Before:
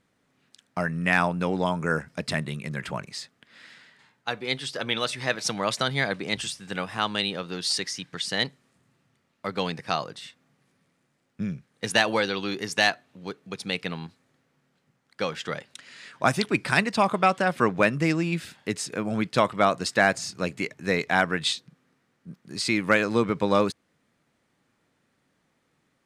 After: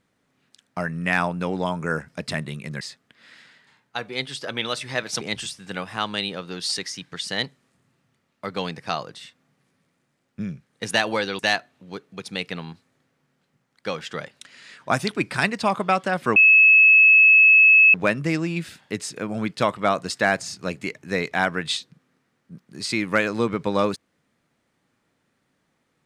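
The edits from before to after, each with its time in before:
2.81–3.13 s: delete
5.53–6.22 s: delete
12.40–12.73 s: delete
17.70 s: add tone 2.59 kHz -9.5 dBFS 1.58 s

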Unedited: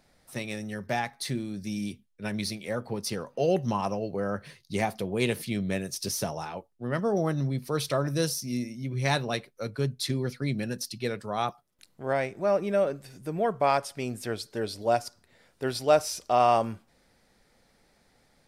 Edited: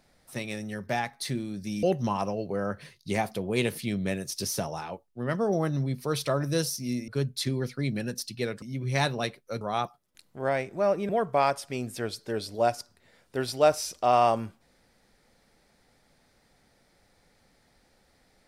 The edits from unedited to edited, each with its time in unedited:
1.83–3.47 s: delete
8.72–9.71 s: move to 11.25 s
12.73–13.36 s: delete

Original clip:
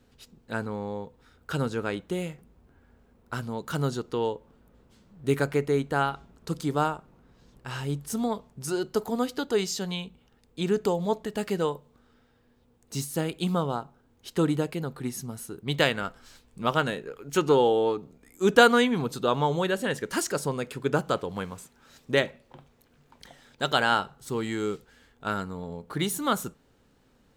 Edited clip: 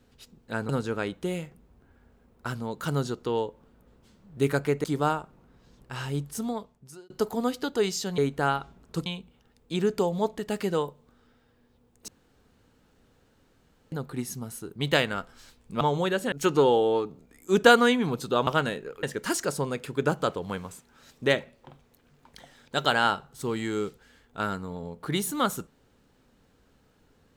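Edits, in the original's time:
0.69–1.56 s: delete
5.71–6.59 s: move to 9.93 s
7.96–8.85 s: fade out
12.95–14.79 s: room tone
16.68–17.24 s: swap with 19.39–19.90 s

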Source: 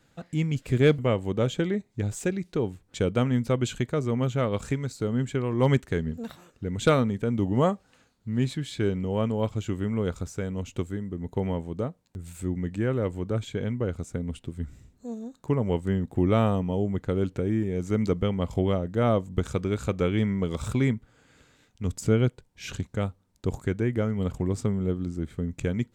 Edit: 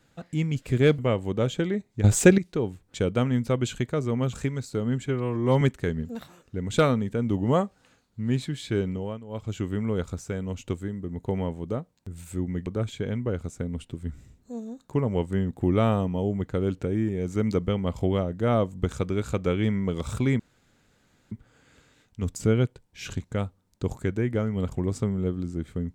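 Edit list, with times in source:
2.04–2.38 s: gain +12 dB
4.33–4.60 s: delete
5.33–5.70 s: stretch 1.5×
8.99–9.64 s: dip -15.5 dB, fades 0.29 s
12.75–13.21 s: delete
20.94 s: insert room tone 0.92 s

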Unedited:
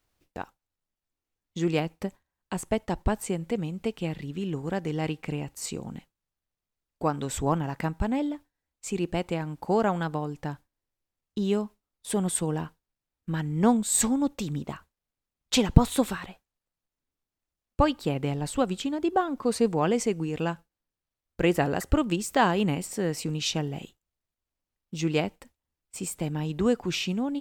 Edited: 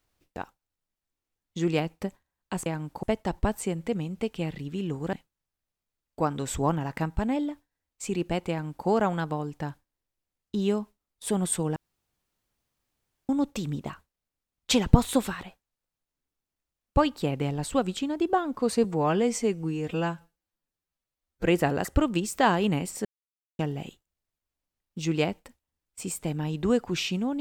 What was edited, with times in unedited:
4.76–5.96 s: delete
9.33–9.70 s: copy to 2.66 s
12.59–14.12 s: room tone
19.67–21.41 s: stretch 1.5×
23.01–23.55 s: mute

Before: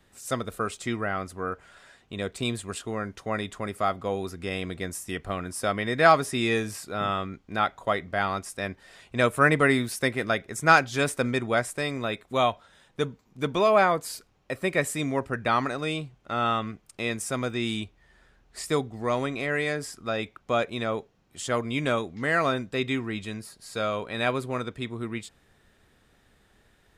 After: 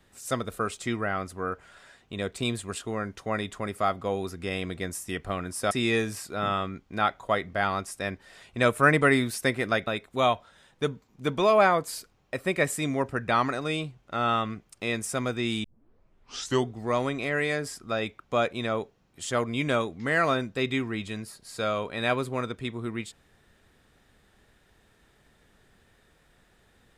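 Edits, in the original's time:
5.71–6.29 s: delete
10.45–12.04 s: delete
17.81 s: tape start 1.08 s

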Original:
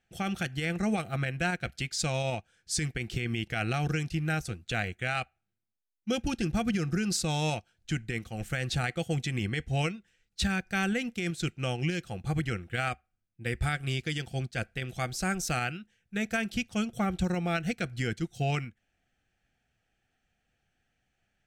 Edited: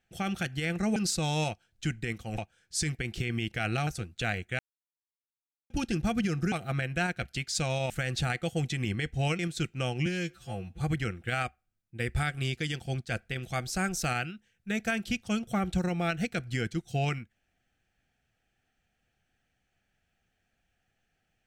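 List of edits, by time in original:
0.96–2.34 s: swap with 7.02–8.44 s
3.83–4.37 s: delete
5.09–6.20 s: mute
9.93–11.22 s: delete
11.89–12.26 s: stretch 2×

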